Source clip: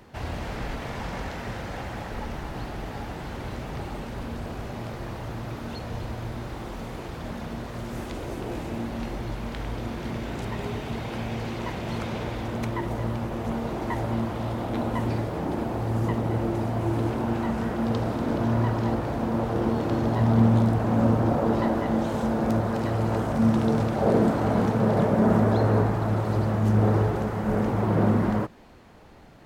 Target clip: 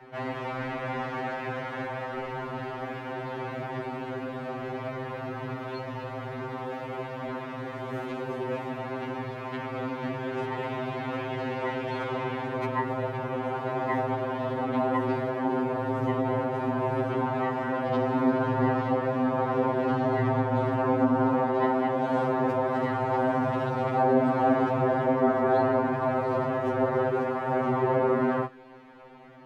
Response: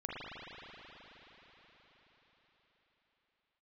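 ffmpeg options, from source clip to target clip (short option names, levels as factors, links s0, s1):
-filter_complex "[0:a]acrossover=split=180 2900:gain=0.178 1 0.126[s0][s1][s2];[s0][s1][s2]amix=inputs=3:normalize=0,alimiter=limit=0.158:level=0:latency=1:release=192,afftfilt=real='re*2.45*eq(mod(b,6),0)':imag='im*2.45*eq(mod(b,6),0)':win_size=2048:overlap=0.75,volume=2"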